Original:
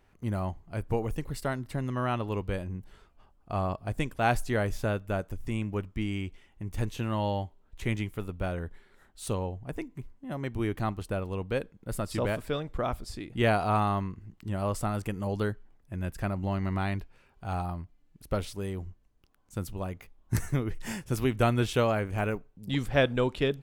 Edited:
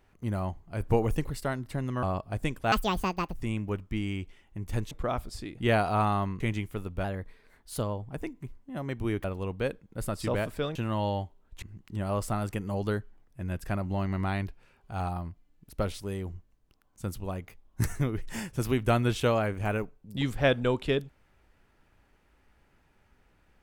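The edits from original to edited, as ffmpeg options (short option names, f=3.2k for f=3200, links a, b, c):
-filter_complex "[0:a]asplit=13[a][b][c][d][e][f][g][h][i][j][k][l][m];[a]atrim=end=0.802[n];[b]atrim=start=0.798:end=1.302,asetpts=PTS-STARTPTS,volume=4.5dB[o];[c]atrim=start=1.298:end=2.032[p];[d]atrim=start=3.578:end=4.274[q];[e]atrim=start=4.27:end=5.4,asetpts=PTS-STARTPTS,asetrate=78939,aresample=44100[r];[f]atrim=start=5.396:end=6.962[s];[g]atrim=start=12.658:end=14.152[t];[h]atrim=start=7.828:end=8.474[u];[i]atrim=start=8.47:end=9.67,asetpts=PTS-STARTPTS,asetrate=48951,aresample=44100[v];[j]atrim=start=9.666:end=10.792[w];[k]atrim=start=11.148:end=12.662[x];[l]atrim=start=6.958:end=7.832[y];[m]atrim=start=14.148[z];[n][o]acrossfade=d=0.004:c1=hsin:c2=hsin[aa];[aa][p]acrossfade=d=0.004:c1=hsin:c2=hsin[ab];[ab][q]acrossfade=d=0.004:c1=hsin:c2=hsin[ac];[ac][r]acrossfade=d=0.004:c1=hsin:c2=hsin[ad];[ad][s]acrossfade=d=0.004:c1=hsin:c2=hsin[ae];[ae][t]acrossfade=d=0.004:c1=hsin:c2=hsin[af];[af][u]acrossfade=d=0.004:c1=hsin:c2=hsin[ag];[ag][v]acrossfade=d=0.004:c1=hsin:c2=hsin[ah];[ah][w]acrossfade=d=0.004:c1=hsin:c2=hsin[ai];[ai][x]acrossfade=d=0.004:c1=hsin:c2=hsin[aj];[aj][y]acrossfade=d=0.004:c1=hsin:c2=hsin[ak];[ak][z]acrossfade=d=0.004:c1=hsin:c2=hsin"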